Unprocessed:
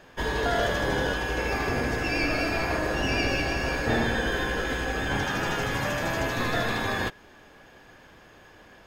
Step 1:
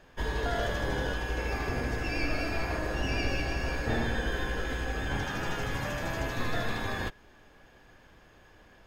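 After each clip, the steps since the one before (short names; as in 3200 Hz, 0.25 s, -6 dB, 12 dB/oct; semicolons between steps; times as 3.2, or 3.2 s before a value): low shelf 74 Hz +11 dB; gain -6.5 dB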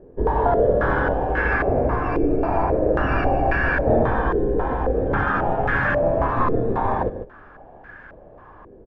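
echo 0.148 s -9 dB; stepped low-pass 3.7 Hz 420–1600 Hz; gain +8.5 dB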